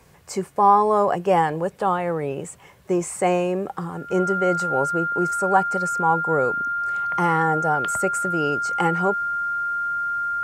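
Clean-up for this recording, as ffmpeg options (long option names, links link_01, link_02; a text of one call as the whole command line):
ffmpeg -i in.wav -af "bandreject=frequency=1400:width=30" out.wav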